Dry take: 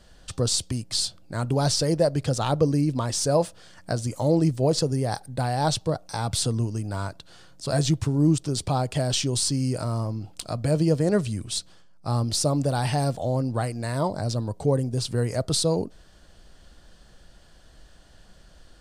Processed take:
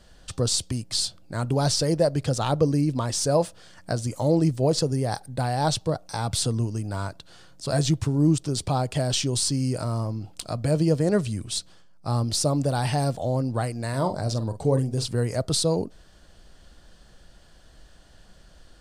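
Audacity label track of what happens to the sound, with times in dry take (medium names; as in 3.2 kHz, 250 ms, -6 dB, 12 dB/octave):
13.890000	15.080000	doubling 45 ms -10 dB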